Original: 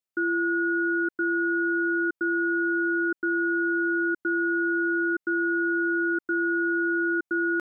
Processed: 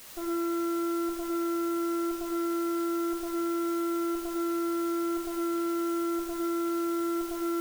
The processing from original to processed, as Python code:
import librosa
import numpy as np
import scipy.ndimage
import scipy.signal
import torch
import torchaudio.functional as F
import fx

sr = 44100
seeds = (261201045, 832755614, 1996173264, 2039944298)

y = fx.spec_expand(x, sr, power=2.4)
y = scipy.signal.sosfilt(scipy.signal.butter(16, 590.0, 'lowpass', fs=sr, output='sos'), y)
y = fx.hum_notches(y, sr, base_hz=50, count=7)
y = y + 0.89 * np.pad(y, (int(4.9 * sr / 1000.0), 0))[:len(y)]
y = fx.cheby_harmonics(y, sr, harmonics=(3, 5, 6, 8), levels_db=(-7, -13, -34, -18), full_scale_db=-20.5)
y = fx.quant_dither(y, sr, seeds[0], bits=8, dither='triangular')
y = fx.rev_gated(y, sr, seeds[1], gate_ms=120, shape='rising', drr_db=1.5)